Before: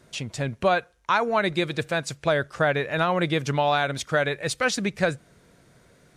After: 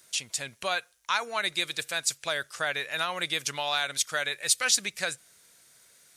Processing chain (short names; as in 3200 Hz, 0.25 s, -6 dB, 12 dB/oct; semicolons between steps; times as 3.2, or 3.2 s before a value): pre-emphasis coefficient 0.97; gain +9 dB